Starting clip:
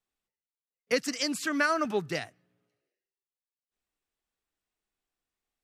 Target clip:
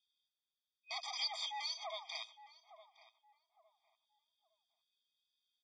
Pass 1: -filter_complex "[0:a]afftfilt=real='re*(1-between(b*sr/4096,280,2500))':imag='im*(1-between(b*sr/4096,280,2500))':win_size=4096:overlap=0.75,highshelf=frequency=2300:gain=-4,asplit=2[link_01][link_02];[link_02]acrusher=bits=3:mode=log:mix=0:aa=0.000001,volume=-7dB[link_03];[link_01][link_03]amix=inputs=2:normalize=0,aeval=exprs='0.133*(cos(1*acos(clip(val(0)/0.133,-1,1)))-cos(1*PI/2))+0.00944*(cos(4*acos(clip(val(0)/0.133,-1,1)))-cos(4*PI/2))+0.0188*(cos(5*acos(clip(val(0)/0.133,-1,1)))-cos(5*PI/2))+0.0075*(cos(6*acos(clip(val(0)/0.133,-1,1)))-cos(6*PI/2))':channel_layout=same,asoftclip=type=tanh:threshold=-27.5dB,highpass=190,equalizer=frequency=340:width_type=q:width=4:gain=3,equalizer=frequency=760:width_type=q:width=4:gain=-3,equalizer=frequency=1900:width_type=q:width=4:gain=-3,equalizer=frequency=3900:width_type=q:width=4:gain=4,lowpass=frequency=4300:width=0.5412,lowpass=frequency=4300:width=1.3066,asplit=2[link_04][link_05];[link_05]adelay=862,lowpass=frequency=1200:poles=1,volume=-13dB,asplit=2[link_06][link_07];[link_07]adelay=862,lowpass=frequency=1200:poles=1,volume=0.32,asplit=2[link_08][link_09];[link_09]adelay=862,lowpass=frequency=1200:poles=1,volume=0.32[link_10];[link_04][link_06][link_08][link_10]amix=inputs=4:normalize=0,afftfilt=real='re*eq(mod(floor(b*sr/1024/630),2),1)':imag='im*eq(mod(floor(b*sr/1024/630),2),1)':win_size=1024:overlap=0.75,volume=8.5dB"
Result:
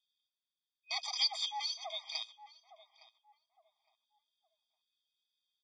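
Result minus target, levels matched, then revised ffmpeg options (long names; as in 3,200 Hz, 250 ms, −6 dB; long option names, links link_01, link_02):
soft clipping: distortion −8 dB
-filter_complex "[0:a]afftfilt=real='re*(1-between(b*sr/4096,280,2500))':imag='im*(1-between(b*sr/4096,280,2500))':win_size=4096:overlap=0.75,highshelf=frequency=2300:gain=-4,asplit=2[link_01][link_02];[link_02]acrusher=bits=3:mode=log:mix=0:aa=0.000001,volume=-7dB[link_03];[link_01][link_03]amix=inputs=2:normalize=0,aeval=exprs='0.133*(cos(1*acos(clip(val(0)/0.133,-1,1)))-cos(1*PI/2))+0.00944*(cos(4*acos(clip(val(0)/0.133,-1,1)))-cos(4*PI/2))+0.0188*(cos(5*acos(clip(val(0)/0.133,-1,1)))-cos(5*PI/2))+0.0075*(cos(6*acos(clip(val(0)/0.133,-1,1)))-cos(6*PI/2))':channel_layout=same,asoftclip=type=tanh:threshold=-37.5dB,highpass=190,equalizer=frequency=340:width_type=q:width=4:gain=3,equalizer=frequency=760:width_type=q:width=4:gain=-3,equalizer=frequency=1900:width_type=q:width=4:gain=-3,equalizer=frequency=3900:width_type=q:width=4:gain=4,lowpass=frequency=4300:width=0.5412,lowpass=frequency=4300:width=1.3066,asplit=2[link_04][link_05];[link_05]adelay=862,lowpass=frequency=1200:poles=1,volume=-13dB,asplit=2[link_06][link_07];[link_07]adelay=862,lowpass=frequency=1200:poles=1,volume=0.32,asplit=2[link_08][link_09];[link_09]adelay=862,lowpass=frequency=1200:poles=1,volume=0.32[link_10];[link_04][link_06][link_08][link_10]amix=inputs=4:normalize=0,afftfilt=real='re*eq(mod(floor(b*sr/1024/630),2),1)':imag='im*eq(mod(floor(b*sr/1024/630),2),1)':win_size=1024:overlap=0.75,volume=8.5dB"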